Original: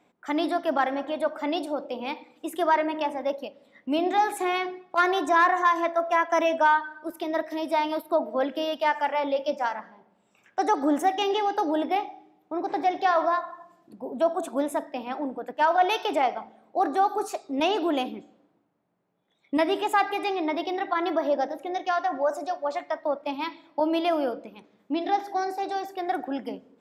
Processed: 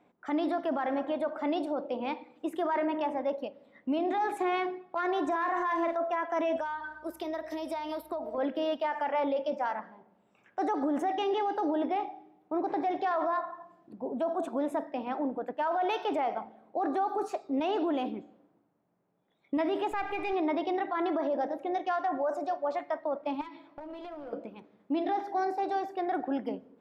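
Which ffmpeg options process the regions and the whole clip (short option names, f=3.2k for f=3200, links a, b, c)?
-filter_complex "[0:a]asettb=1/sr,asplit=3[a][b][c];[a]atrim=end=5.254[d];[b]atrim=start=5.25:end=5.97,asetpts=PTS-STARTPTS,afade=t=in:d=0.004:c=qsin,afade=t=out:st=0.716:d=0.004:c=qsin,aeval=exprs='sgn(val(0))*max(abs(val(0))-0.00282,0)':c=same,asplit=2[e][f];[f]adelay=42,volume=-7dB[g];[e][g]amix=inputs=2:normalize=0,atrim=end_sample=31752[h];[c]atrim=start=5.966[i];[d][h]acrossfade=d=0.004:c1=hsin:c2=qsin[j];[j][i]acrossfade=d=0.004:c1=qsin:c2=hsin,asettb=1/sr,asplit=3[k][l][m];[k]atrim=end=6.564[n];[l]atrim=start=6.56:end=8.38,asetpts=PTS-STARTPTS,afade=t=in:d=0.004:c=qsin,afade=t=out:st=1.816:d=0.004:c=qsin,bass=f=250:g=-10,treble=f=4k:g=12,acompressor=threshold=-29dB:ratio=16:attack=3.2:release=140:knee=1:detection=peak,aeval=exprs='val(0)+0.000501*(sin(2*PI*60*n/s)+sin(2*PI*2*60*n/s)/2+sin(2*PI*3*60*n/s)/3+sin(2*PI*4*60*n/s)/4+sin(2*PI*5*60*n/s)/5)':c=same[o];[m]atrim=start=8.376[p];[n][o]acrossfade=d=0.004:c1=hsin:c2=qsin[q];[q][p]acrossfade=d=0.004:c1=qsin:c2=hsin,asettb=1/sr,asplit=3[r][s][t];[r]atrim=end=19.914[u];[s]atrim=start=19.91:end=20.33,asetpts=PTS-STARTPTS,afade=t=in:d=0.004:c=qsin,afade=t=out:st=0.416:d=0.004:c=qsin,aeval=exprs='if(lt(val(0),0),0.447*val(0),val(0))':c=same,equalizer=f=2.4k:w=7.4:g=9,acompressor=threshold=-23dB:ratio=6:attack=3.2:release=140:knee=1:detection=peak[v];[t]atrim=start=20.326[w];[u][v]acrossfade=d=0.004:c1=hsin:c2=qsin[x];[x][w]acrossfade=d=0.004:c1=qsin:c2=hsin,asettb=1/sr,asplit=3[y][z][aa];[y]atrim=end=23.414[ab];[z]atrim=start=23.41:end=24.33,asetpts=PTS-STARTPTS,afade=t=in:d=0.004:c=qsin,afade=t=out:st=0.916:d=0.004:c=qsin,asplit=2[ac][ad];[ad]adelay=14,volume=-6dB[ae];[ac][ae]amix=inputs=2:normalize=0,atrim=end_sample=40572,acompressor=threshold=-37dB:ratio=12:attack=3.2:release=140:knee=1:detection=peak,aeval=exprs='clip(val(0),-1,0.01)':c=same[af];[aa]atrim=start=24.326[ag];[ab][af]acrossfade=d=0.004:c1=hsin:c2=qsin[ah];[ah][ag]acrossfade=d=0.004:c1=qsin:c2=hsin,lowpass=f=1.6k:p=1,alimiter=limit=-22.5dB:level=0:latency=1:release=20"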